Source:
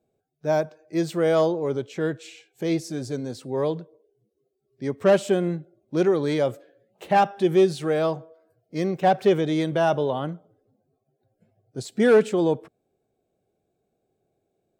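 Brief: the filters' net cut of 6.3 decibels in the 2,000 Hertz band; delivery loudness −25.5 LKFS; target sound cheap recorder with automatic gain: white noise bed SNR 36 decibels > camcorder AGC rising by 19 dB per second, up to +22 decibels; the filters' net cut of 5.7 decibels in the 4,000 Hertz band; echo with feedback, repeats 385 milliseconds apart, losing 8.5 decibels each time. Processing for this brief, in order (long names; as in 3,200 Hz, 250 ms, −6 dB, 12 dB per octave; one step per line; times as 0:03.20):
parametric band 2,000 Hz −8 dB
parametric band 4,000 Hz −4.5 dB
repeating echo 385 ms, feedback 38%, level −8.5 dB
white noise bed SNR 36 dB
camcorder AGC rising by 19 dB per second, up to +22 dB
level −2 dB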